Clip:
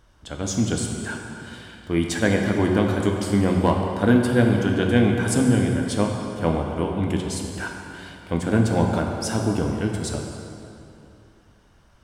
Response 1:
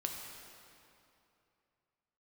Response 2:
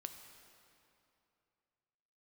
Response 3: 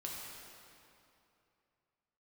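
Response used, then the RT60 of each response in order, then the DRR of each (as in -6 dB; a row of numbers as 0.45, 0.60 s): 1; 2.8, 2.8, 2.8 s; 1.0, 6.0, -3.5 dB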